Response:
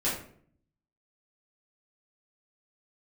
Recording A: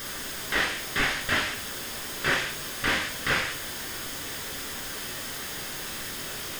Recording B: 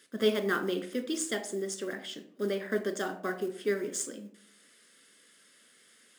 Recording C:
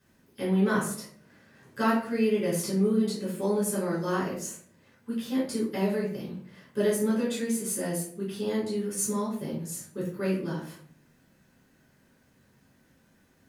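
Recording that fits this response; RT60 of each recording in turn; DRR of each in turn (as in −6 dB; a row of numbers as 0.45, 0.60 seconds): C; 0.55, 0.55, 0.55 seconds; 0.0, 5.5, −9.5 decibels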